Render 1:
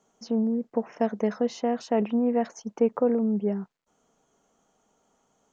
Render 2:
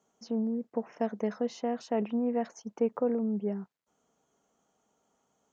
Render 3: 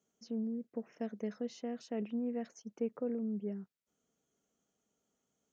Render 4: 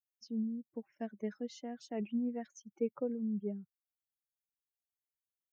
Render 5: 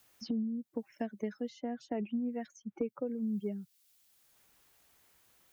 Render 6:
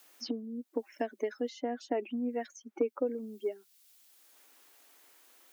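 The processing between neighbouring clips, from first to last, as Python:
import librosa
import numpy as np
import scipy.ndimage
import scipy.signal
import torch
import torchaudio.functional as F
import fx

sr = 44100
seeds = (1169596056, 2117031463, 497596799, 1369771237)

y1 = scipy.signal.sosfilt(scipy.signal.butter(2, 50.0, 'highpass', fs=sr, output='sos'), x)
y1 = y1 * 10.0 ** (-5.5 / 20.0)
y2 = fx.peak_eq(y1, sr, hz=900.0, db=-12.0, octaves=1.1)
y2 = y2 * 10.0 ** (-5.5 / 20.0)
y3 = fx.bin_expand(y2, sr, power=2.0)
y3 = y3 * 10.0 ** (4.0 / 20.0)
y4 = fx.band_squash(y3, sr, depth_pct=100)
y4 = y4 * 10.0 ** (1.5 / 20.0)
y5 = fx.brickwall_highpass(y4, sr, low_hz=240.0)
y5 = y5 * 10.0 ** (6.0 / 20.0)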